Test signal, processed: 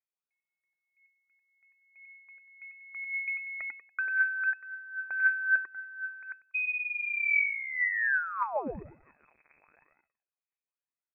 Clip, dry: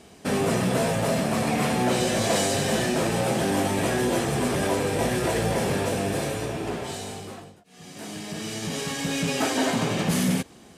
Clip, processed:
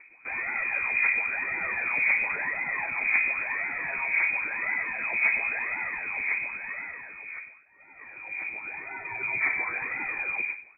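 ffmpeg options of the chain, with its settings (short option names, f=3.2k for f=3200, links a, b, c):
-af "aecho=1:1:95|190|285|380:0.668|0.187|0.0524|0.0147,aphaser=in_gain=1:out_gain=1:delay=1.8:decay=0.67:speed=0.95:type=triangular,lowpass=f=2.2k:t=q:w=0.5098,lowpass=f=2.2k:t=q:w=0.6013,lowpass=f=2.2k:t=q:w=0.9,lowpass=f=2.2k:t=q:w=2.563,afreqshift=-2600,volume=-8.5dB"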